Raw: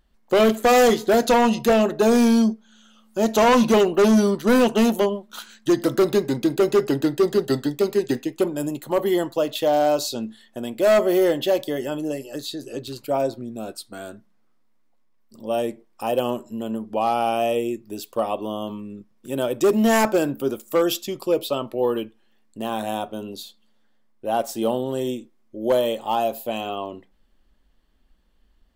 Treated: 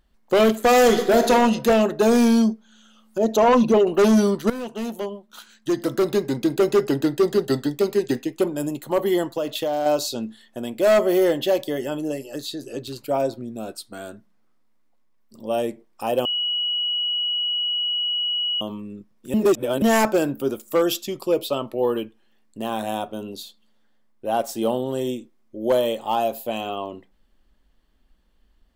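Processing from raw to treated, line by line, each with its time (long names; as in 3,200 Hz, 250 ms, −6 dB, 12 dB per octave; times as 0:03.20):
0:00.80–0:01.31: thrown reverb, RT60 0.98 s, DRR 5.5 dB
0:03.18–0:03.87: spectral envelope exaggerated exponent 1.5
0:04.50–0:06.59: fade in, from −16.5 dB
0:09.27–0:09.86: downward compressor, threshold −20 dBFS
0:16.25–0:18.61: beep over 2,920 Hz −21 dBFS
0:19.34–0:19.82: reverse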